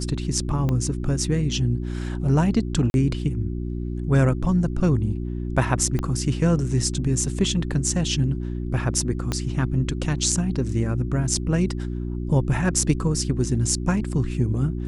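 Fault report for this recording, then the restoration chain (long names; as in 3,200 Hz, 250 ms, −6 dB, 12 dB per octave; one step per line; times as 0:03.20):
mains hum 60 Hz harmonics 6 −28 dBFS
0:00.69: click −14 dBFS
0:02.90–0:02.94: drop-out 41 ms
0:05.99: click −14 dBFS
0:09.32: click −11 dBFS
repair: click removal
hum removal 60 Hz, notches 6
repair the gap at 0:02.90, 41 ms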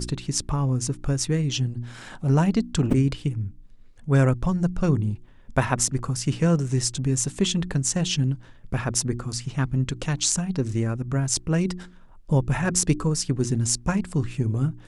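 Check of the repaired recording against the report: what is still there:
0:00.69: click
0:05.99: click
0:09.32: click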